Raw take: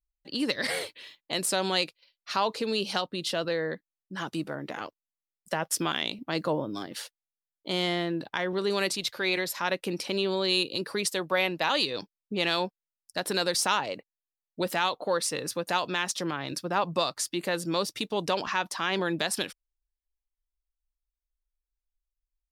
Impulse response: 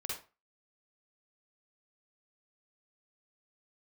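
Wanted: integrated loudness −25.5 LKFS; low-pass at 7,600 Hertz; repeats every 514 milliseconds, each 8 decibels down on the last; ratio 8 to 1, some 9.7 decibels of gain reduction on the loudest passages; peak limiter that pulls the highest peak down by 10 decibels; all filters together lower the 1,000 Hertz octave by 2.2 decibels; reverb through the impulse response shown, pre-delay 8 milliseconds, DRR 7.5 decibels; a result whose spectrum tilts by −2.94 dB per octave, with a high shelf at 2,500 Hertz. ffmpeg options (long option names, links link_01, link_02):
-filter_complex "[0:a]lowpass=7600,equalizer=frequency=1000:width_type=o:gain=-3.5,highshelf=frequency=2500:gain=4,acompressor=threshold=-31dB:ratio=8,alimiter=level_in=2.5dB:limit=-24dB:level=0:latency=1,volume=-2.5dB,aecho=1:1:514|1028|1542|2056|2570:0.398|0.159|0.0637|0.0255|0.0102,asplit=2[link_01][link_02];[1:a]atrim=start_sample=2205,adelay=8[link_03];[link_02][link_03]afir=irnorm=-1:irlink=0,volume=-8.5dB[link_04];[link_01][link_04]amix=inputs=2:normalize=0,volume=11.5dB"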